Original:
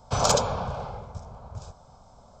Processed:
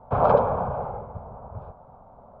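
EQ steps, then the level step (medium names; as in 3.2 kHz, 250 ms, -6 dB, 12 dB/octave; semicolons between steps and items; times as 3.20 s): low-pass 1.1 kHz 12 dB/octave; distance through air 450 m; bass shelf 220 Hz -10.5 dB; +9.0 dB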